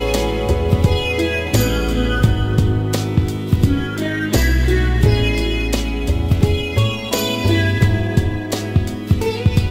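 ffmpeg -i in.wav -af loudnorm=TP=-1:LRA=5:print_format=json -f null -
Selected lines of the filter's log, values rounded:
"input_i" : "-17.8",
"input_tp" : "-2.3",
"input_lra" : "0.8",
"input_thresh" : "-27.8",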